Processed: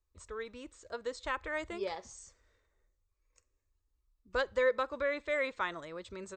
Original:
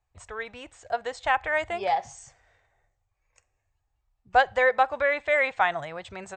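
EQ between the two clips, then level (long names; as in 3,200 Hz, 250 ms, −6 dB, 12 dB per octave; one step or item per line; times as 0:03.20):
flat-topped bell 2,200 Hz −8.5 dB 1.3 octaves
high-shelf EQ 4,100 Hz −6 dB
phaser with its sweep stopped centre 310 Hz, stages 4
0.0 dB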